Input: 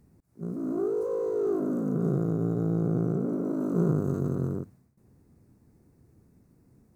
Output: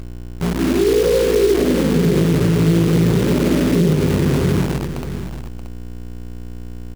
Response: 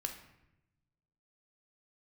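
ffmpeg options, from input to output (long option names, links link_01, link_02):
-filter_complex "[0:a]lowshelf=frequency=80:gain=-3.5[link_01];[1:a]atrim=start_sample=2205[link_02];[link_01][link_02]afir=irnorm=-1:irlink=0,afftfilt=real='re*gte(hypot(re,im),0.0398)':imag='im*gte(hypot(re,im),0.0398)':win_size=1024:overlap=0.75,aeval=exprs='val(0)+0.00891*(sin(2*PI*60*n/s)+sin(2*PI*2*60*n/s)/2+sin(2*PI*3*60*n/s)/3+sin(2*PI*4*60*n/s)/4+sin(2*PI*5*60*n/s)/5)':channel_layout=same,adynamicequalizer=threshold=0.00891:dfrequency=890:dqfactor=0.72:tfrequency=890:tqfactor=0.72:attack=5:release=100:ratio=0.375:range=2:mode=cutabove:tftype=bell,acrusher=bits=7:dc=4:mix=0:aa=0.000001,aecho=1:1:629:0.282,alimiter=level_in=21dB:limit=-1dB:release=50:level=0:latency=1,volume=-6dB"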